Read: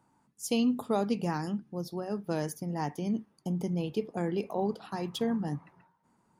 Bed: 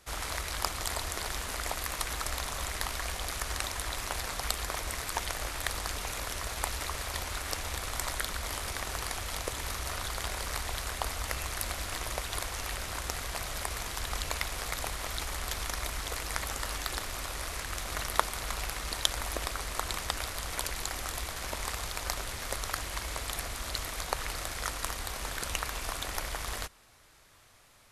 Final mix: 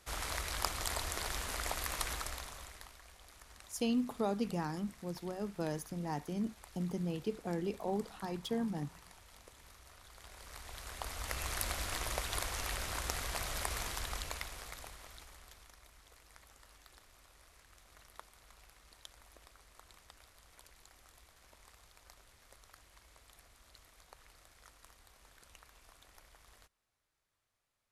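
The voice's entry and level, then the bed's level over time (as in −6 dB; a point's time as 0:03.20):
3.30 s, −5.5 dB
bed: 0:02.09 −3.5 dB
0:03.01 −22.5 dB
0:10.03 −22.5 dB
0:11.51 −2.5 dB
0:13.84 −2.5 dB
0:15.80 −25.5 dB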